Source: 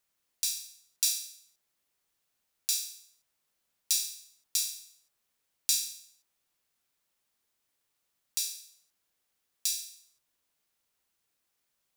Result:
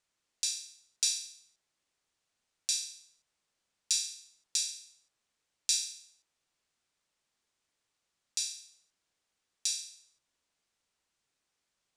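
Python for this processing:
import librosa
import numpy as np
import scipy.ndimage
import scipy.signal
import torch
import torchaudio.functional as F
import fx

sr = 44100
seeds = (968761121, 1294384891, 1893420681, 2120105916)

y = scipy.signal.sosfilt(scipy.signal.butter(4, 8600.0, 'lowpass', fs=sr, output='sos'), x)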